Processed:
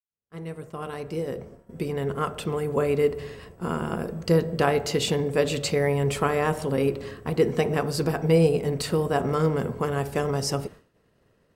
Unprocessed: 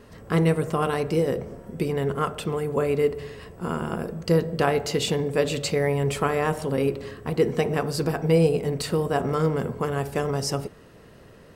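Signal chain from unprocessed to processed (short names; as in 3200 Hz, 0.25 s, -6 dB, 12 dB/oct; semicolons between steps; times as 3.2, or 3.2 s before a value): opening faded in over 2.73 s; expander -38 dBFS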